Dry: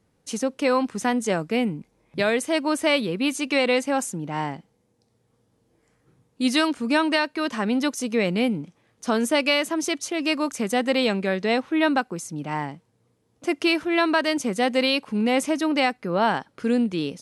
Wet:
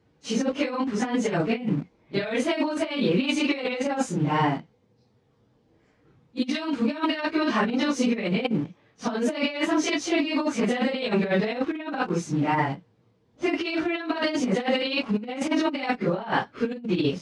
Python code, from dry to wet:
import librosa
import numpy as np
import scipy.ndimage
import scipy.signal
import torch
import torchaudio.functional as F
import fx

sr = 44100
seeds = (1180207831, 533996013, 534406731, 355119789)

p1 = fx.phase_scramble(x, sr, seeds[0], window_ms=100)
p2 = fx.peak_eq(p1, sr, hz=4500.0, db=7.5, octaves=2.3)
p3 = fx.quant_dither(p2, sr, seeds[1], bits=6, dither='none')
p4 = p2 + (p3 * 10.0 ** (-8.0 / 20.0))
p5 = fx.spacing_loss(p4, sr, db_at_10k=25)
p6 = fx.over_compress(p5, sr, threshold_db=-24.0, ratio=-0.5)
y = scipy.signal.sosfilt(scipy.signal.butter(2, 45.0, 'highpass', fs=sr, output='sos'), p6)